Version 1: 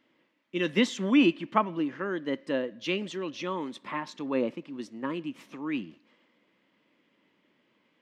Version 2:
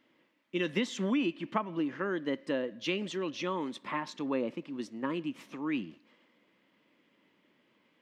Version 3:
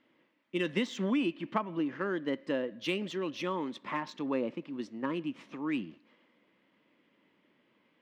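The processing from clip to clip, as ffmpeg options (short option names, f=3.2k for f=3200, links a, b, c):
-af "acompressor=threshold=-27dB:ratio=6"
-af "adynamicsmooth=sensitivity=7.5:basefreq=5.6k"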